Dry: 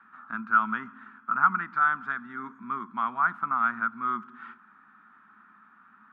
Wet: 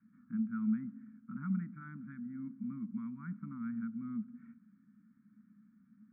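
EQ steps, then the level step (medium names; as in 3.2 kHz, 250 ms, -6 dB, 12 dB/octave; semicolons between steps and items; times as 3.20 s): cascade formant filter u; elliptic band-stop 200–1700 Hz, stop band 50 dB; +18.0 dB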